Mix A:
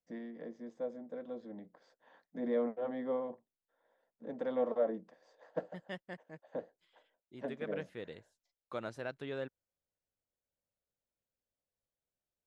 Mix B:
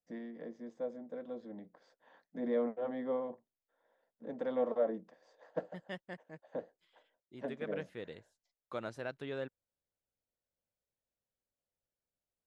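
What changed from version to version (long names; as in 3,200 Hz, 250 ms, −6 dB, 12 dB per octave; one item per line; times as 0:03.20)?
nothing changed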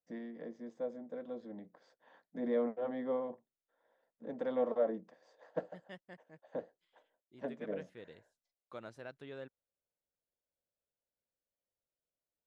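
second voice −7.0 dB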